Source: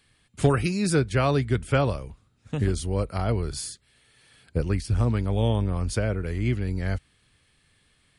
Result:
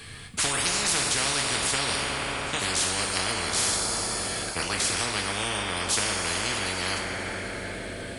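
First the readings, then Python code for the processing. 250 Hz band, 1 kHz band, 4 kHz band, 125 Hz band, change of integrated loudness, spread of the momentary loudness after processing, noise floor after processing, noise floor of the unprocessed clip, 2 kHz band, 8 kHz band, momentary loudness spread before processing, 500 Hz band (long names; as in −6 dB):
−8.0 dB, +3.0 dB, +13.5 dB, −13.5 dB, +0.5 dB, 8 LU, −38 dBFS, −65 dBFS, +8.0 dB, +14.0 dB, 11 LU, −5.5 dB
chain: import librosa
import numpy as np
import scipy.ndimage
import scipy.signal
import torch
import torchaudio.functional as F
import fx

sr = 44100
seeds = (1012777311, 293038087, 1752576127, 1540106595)

y = fx.rev_double_slope(x, sr, seeds[0], early_s=0.31, late_s=4.4, knee_db=-18, drr_db=0.5)
y = fx.spectral_comp(y, sr, ratio=10.0)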